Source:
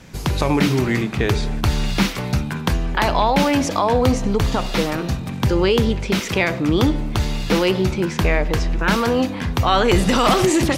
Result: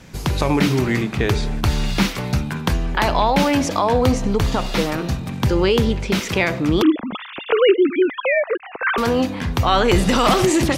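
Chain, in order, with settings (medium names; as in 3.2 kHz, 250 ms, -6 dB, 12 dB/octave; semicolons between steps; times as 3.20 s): 6.82–8.98 s: formants replaced by sine waves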